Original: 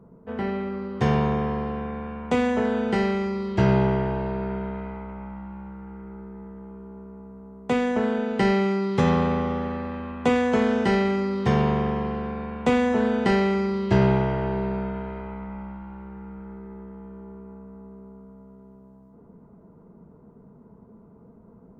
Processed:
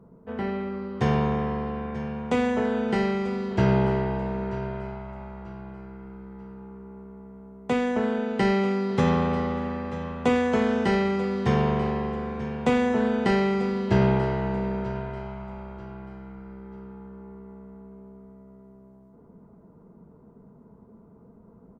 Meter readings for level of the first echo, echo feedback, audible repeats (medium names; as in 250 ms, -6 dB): -15.0 dB, 31%, 2